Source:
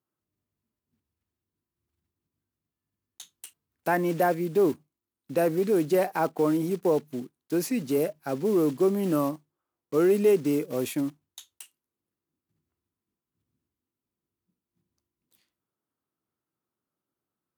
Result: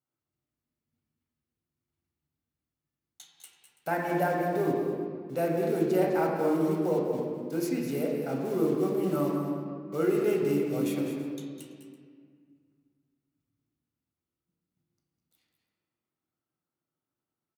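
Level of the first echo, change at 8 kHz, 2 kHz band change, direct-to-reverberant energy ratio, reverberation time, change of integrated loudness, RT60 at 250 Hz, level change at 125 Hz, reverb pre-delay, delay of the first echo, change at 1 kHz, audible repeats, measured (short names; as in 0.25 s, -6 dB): -11.0 dB, -5.5 dB, -2.0 dB, -2.0 dB, 2.0 s, -3.0 dB, 2.6 s, 0.0 dB, 7 ms, 0.202 s, -2.0 dB, 1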